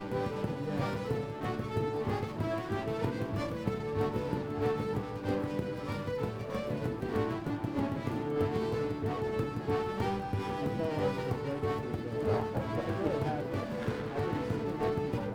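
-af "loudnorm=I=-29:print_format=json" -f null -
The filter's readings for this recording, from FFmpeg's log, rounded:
"input_i" : "-34.0",
"input_tp" : "-17.2",
"input_lra" : "1.0",
"input_thresh" : "-44.0",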